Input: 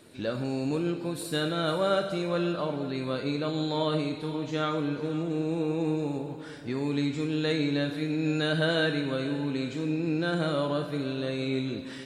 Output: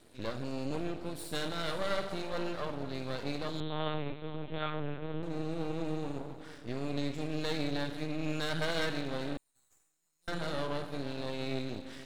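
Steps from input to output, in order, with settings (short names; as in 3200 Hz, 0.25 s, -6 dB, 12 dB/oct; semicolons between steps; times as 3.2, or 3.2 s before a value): 9.37–10.28 inverse Chebyshev high-pass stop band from 2600 Hz, stop band 60 dB; half-wave rectifier; 3.6–5.23 LPC vocoder at 8 kHz pitch kept; gain -2.5 dB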